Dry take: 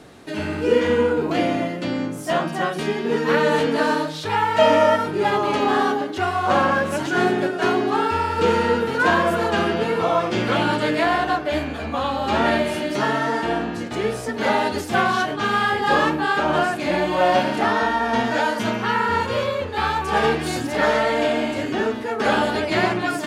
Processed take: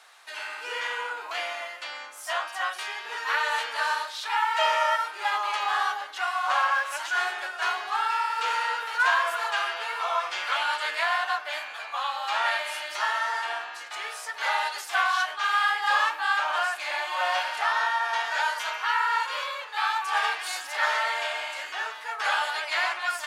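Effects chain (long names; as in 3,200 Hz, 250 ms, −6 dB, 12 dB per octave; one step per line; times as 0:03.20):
high-pass filter 900 Hz 24 dB per octave
level −2 dB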